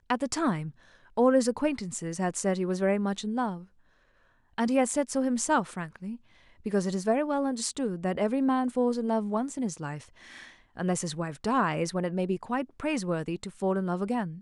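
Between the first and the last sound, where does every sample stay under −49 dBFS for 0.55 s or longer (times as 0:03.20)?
0:03.65–0:04.58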